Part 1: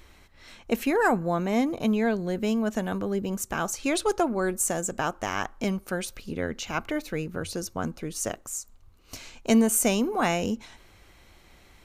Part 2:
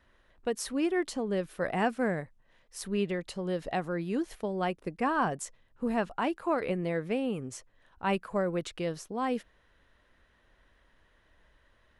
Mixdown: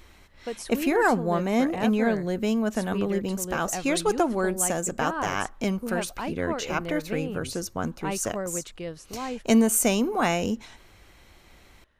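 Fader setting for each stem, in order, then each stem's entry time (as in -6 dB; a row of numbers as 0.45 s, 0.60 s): +1.0 dB, -2.5 dB; 0.00 s, 0.00 s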